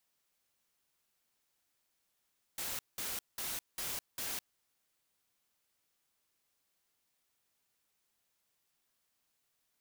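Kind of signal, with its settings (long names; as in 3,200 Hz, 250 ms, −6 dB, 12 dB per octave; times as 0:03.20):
noise bursts white, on 0.21 s, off 0.19 s, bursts 5, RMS −39 dBFS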